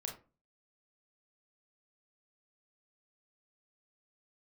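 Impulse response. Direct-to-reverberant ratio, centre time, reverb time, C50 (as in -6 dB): 1.0 dB, 21 ms, 0.35 s, 8.5 dB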